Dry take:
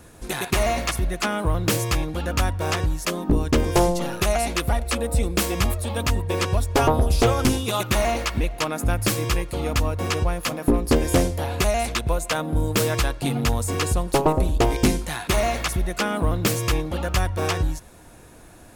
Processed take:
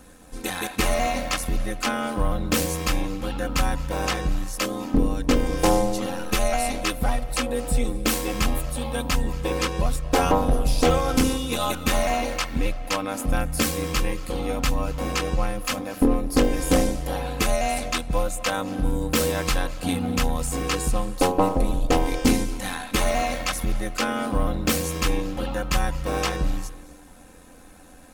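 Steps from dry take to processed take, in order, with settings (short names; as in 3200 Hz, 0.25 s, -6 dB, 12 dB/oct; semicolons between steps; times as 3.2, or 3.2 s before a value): digital reverb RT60 0.81 s, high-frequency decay 0.7×, pre-delay 0.105 s, DRR 16 dB; granular stretch 1.5×, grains 23 ms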